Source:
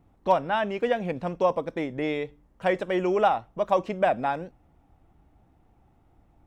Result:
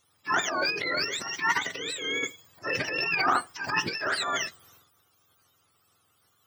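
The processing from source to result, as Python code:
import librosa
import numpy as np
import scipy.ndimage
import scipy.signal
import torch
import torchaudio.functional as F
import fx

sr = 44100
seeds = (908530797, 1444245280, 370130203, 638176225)

y = fx.octave_mirror(x, sr, pivot_hz=990.0)
y = fx.transient(y, sr, attack_db=-6, sustain_db=12)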